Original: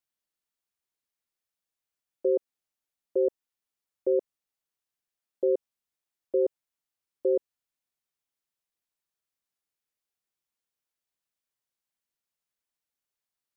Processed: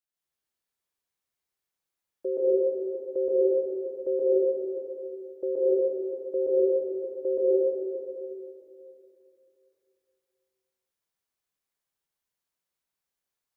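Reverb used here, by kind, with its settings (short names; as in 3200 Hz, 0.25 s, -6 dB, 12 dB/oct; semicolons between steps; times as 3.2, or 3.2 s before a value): plate-style reverb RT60 2.9 s, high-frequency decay 0.55×, pre-delay 0.12 s, DRR -8 dB; gain -5.5 dB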